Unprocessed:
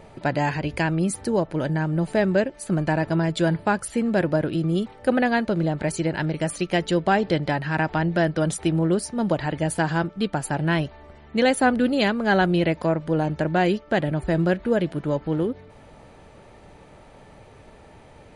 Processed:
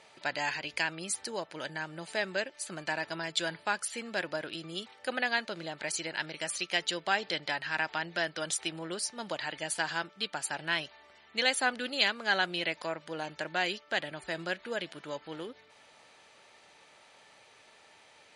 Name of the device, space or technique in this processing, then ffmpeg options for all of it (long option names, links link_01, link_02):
piezo pickup straight into a mixer: -af "lowpass=5100,aderivative,volume=8.5dB"